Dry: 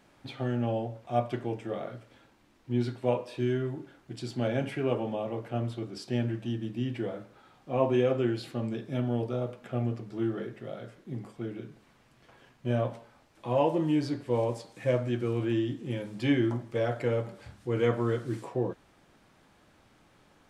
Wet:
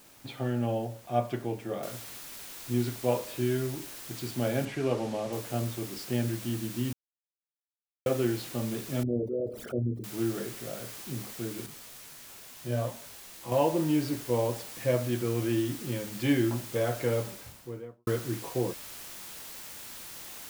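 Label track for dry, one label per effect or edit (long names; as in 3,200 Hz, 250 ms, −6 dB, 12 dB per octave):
1.830000	1.830000	noise floor change −57 dB −44 dB
4.650000	5.330000	high-frequency loss of the air 59 metres
6.930000	8.060000	silence
9.030000	10.040000	spectral envelope exaggerated exponent 3
11.660000	13.520000	micro pitch shift up and down each way 24 cents
17.180000	18.070000	fade out and dull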